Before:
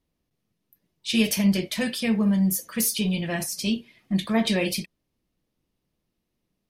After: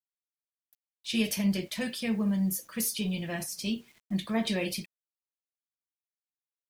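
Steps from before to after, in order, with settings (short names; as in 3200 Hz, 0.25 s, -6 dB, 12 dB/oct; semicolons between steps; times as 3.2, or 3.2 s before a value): bit-crush 9-bit; gain -6.5 dB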